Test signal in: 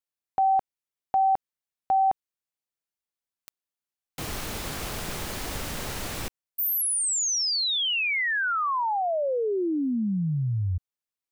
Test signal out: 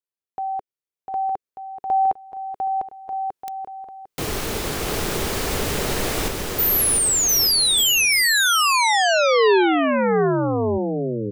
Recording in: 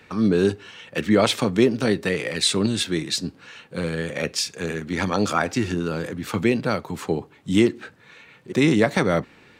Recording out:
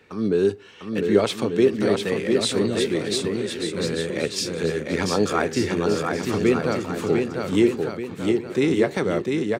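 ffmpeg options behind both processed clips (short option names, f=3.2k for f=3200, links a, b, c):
-filter_complex "[0:a]equalizer=f=410:w=2.3:g=7.5,dynaudnorm=f=460:g=9:m=13dB,asplit=2[a][b];[b]aecho=0:1:700|1190|1533|1773|1941:0.631|0.398|0.251|0.158|0.1[c];[a][c]amix=inputs=2:normalize=0,volume=-6dB"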